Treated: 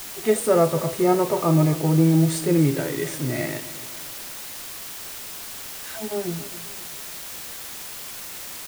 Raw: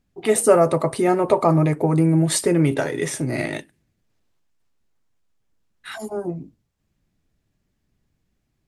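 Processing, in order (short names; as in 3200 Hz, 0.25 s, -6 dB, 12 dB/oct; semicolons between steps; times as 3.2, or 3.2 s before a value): harmonic-percussive split percussive -11 dB; requantised 6-bit, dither triangular; feedback echo 0.267 s, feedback 44%, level -16 dB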